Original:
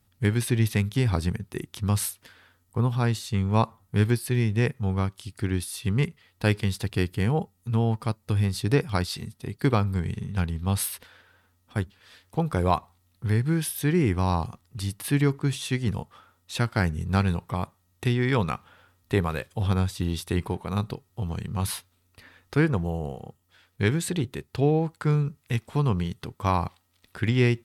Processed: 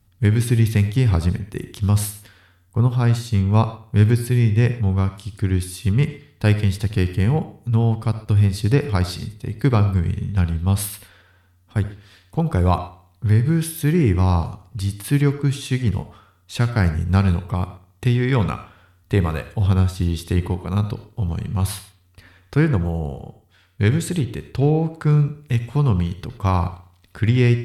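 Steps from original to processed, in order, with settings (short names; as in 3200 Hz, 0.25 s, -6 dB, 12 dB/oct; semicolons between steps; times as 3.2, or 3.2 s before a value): low shelf 150 Hz +9.5 dB; analogue delay 67 ms, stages 2048, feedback 44%, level -16 dB; on a send at -12.5 dB: reverb, pre-delay 40 ms; on the sum: gain +1.5 dB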